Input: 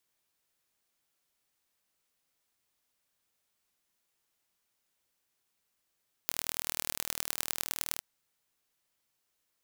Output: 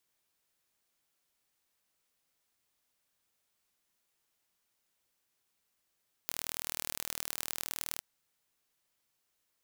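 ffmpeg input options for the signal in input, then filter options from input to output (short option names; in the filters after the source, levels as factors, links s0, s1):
-f lavfi -i "aevalsrc='0.75*eq(mod(n,1119),0)*(0.5+0.5*eq(mod(n,4476),0))':d=1.71:s=44100"
-af "asoftclip=type=tanh:threshold=0.473"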